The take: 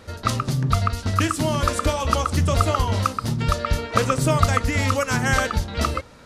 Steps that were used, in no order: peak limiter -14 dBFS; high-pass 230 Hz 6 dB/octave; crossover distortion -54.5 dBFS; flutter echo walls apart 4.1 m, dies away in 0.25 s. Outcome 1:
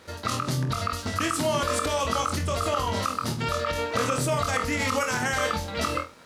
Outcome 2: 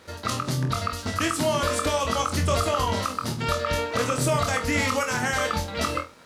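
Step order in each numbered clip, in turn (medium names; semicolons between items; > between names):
flutter echo > peak limiter > high-pass > crossover distortion; high-pass > peak limiter > flutter echo > crossover distortion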